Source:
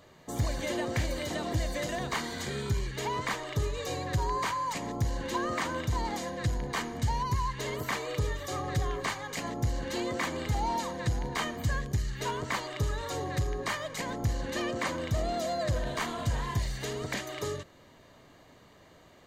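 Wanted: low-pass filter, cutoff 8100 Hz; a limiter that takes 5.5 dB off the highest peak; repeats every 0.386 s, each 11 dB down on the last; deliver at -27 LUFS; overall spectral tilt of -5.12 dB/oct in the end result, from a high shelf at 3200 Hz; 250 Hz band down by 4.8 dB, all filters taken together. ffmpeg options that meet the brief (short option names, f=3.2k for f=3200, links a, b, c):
-af "lowpass=8.1k,equalizer=f=250:t=o:g=-7,highshelf=f=3.2k:g=-6,alimiter=level_in=1dB:limit=-24dB:level=0:latency=1,volume=-1dB,aecho=1:1:386|772|1158:0.282|0.0789|0.0221,volume=8.5dB"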